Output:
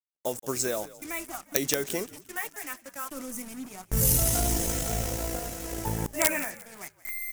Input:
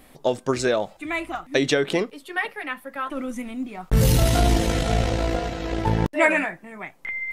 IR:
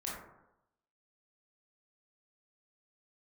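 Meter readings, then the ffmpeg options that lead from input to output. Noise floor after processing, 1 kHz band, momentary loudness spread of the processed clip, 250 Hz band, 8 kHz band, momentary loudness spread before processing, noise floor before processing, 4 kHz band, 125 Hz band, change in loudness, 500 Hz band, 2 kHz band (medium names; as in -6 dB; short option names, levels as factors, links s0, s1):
-62 dBFS, -9.5 dB, 14 LU, -9.5 dB, +6.0 dB, 12 LU, -53 dBFS, -6.5 dB, -9.5 dB, -5.0 dB, -9.5 dB, -9.5 dB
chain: -filter_complex "[0:a]acrusher=bits=5:mix=0:aa=0.5,agate=range=0.00501:threshold=0.00891:ratio=16:detection=peak,aeval=exprs='(mod(2.24*val(0)+1,2)-1)/2.24':c=same,asplit=4[s0][s1][s2][s3];[s1]adelay=175,afreqshift=-60,volume=0.119[s4];[s2]adelay=350,afreqshift=-120,volume=0.0452[s5];[s3]adelay=525,afreqshift=-180,volume=0.0172[s6];[s0][s4][s5][s6]amix=inputs=4:normalize=0,aexciter=amount=4.8:drive=7:freq=5600,volume=0.335"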